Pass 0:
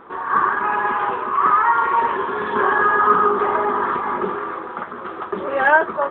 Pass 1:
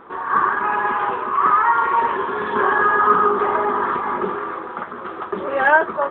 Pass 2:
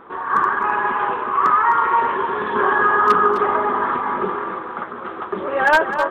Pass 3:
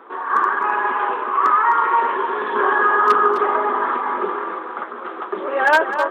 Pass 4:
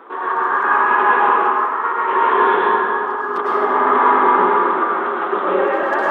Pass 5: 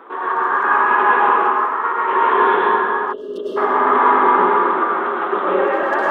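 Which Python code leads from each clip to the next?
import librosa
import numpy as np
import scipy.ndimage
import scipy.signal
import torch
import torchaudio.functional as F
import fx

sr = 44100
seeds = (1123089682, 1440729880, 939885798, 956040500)

y1 = x
y2 = 10.0 ** (-6.0 / 20.0) * (np.abs((y1 / 10.0 ** (-6.0 / 20.0) + 3.0) % 4.0 - 2.0) - 1.0)
y2 = y2 + 10.0 ** (-10.0 / 20.0) * np.pad(y2, (int(257 * sr / 1000.0), 0))[:len(y2)]
y3 = scipy.signal.sosfilt(scipy.signal.butter(4, 270.0, 'highpass', fs=sr, output='sos'), y2)
y4 = fx.over_compress(y3, sr, threshold_db=-21.0, ratio=-0.5)
y4 = fx.rev_plate(y4, sr, seeds[0], rt60_s=2.1, hf_ratio=0.65, predelay_ms=90, drr_db=-5.5)
y4 = y4 * 10.0 ** (-1.0 / 20.0)
y5 = fx.spec_box(y4, sr, start_s=3.13, length_s=0.44, low_hz=650.0, high_hz=2700.0, gain_db=-30)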